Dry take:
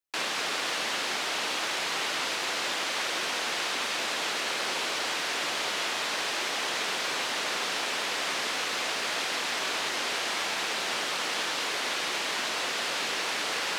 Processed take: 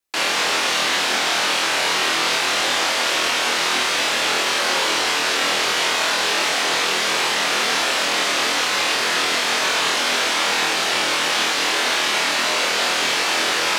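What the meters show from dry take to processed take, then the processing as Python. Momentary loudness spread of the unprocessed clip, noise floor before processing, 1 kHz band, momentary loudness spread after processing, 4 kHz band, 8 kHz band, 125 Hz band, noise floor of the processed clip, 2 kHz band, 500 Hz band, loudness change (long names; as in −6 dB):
0 LU, −32 dBFS, +11.0 dB, 0 LU, +10.5 dB, +10.5 dB, +10.5 dB, −21 dBFS, +10.5 dB, +10.5 dB, +10.5 dB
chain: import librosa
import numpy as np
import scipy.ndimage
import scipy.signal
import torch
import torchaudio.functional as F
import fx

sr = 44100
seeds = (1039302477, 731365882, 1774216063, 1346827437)

y = fx.vibrato(x, sr, rate_hz=0.54, depth_cents=6.0)
y = fx.room_flutter(y, sr, wall_m=4.2, rt60_s=0.44)
y = y * 10.0 ** (8.0 / 20.0)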